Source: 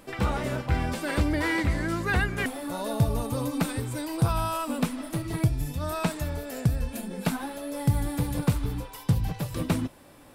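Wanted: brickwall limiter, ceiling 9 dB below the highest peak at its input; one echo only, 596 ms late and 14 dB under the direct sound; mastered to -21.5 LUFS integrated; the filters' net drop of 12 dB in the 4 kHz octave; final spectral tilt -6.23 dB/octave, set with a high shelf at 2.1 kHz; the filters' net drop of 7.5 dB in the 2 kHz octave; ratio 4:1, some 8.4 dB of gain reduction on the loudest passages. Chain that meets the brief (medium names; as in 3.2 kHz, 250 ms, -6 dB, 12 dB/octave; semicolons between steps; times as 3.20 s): peaking EQ 2 kHz -5 dB; treble shelf 2.1 kHz -5.5 dB; peaking EQ 4 kHz -8.5 dB; compression 4:1, threshold -28 dBFS; peak limiter -27 dBFS; delay 596 ms -14 dB; trim +15 dB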